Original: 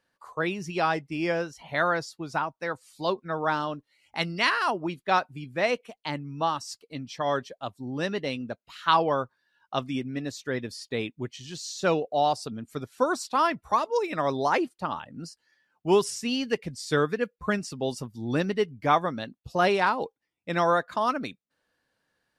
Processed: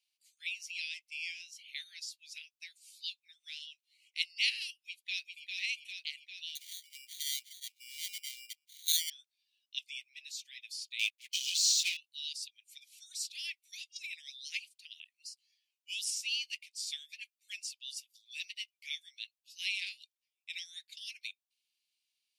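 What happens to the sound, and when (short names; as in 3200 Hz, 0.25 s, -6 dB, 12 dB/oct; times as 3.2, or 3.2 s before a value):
4.83–5.45 echo throw 0.4 s, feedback 65%, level -4 dB
6.55–9.1 sample-rate reducer 2600 Hz
10.99–11.97 sample leveller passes 3
whole clip: steep high-pass 2300 Hz 72 dB/oct; gain -1 dB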